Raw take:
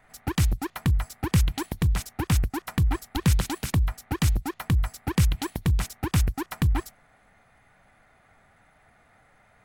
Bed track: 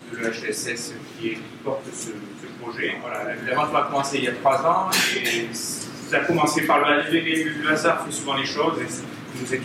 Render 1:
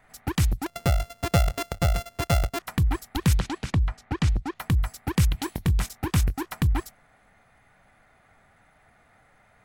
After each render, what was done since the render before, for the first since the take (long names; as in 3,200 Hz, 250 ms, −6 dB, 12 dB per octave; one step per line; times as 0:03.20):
0:00.66–0:02.59: samples sorted by size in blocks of 64 samples
0:03.39–0:04.55: high-frequency loss of the air 91 metres
0:05.40–0:06.54: double-tracking delay 22 ms −13.5 dB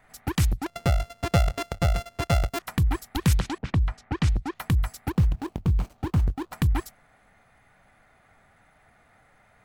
0:00.52–0:02.48: high-shelf EQ 9,200 Hz −9.5 dB
0:03.58–0:04.53: low-pass that shuts in the quiet parts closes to 540 Hz, open at −23 dBFS
0:05.10–0:06.53: running median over 25 samples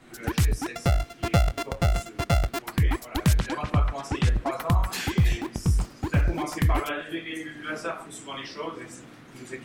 mix in bed track −12.5 dB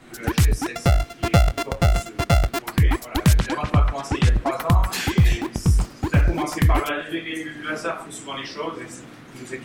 level +5 dB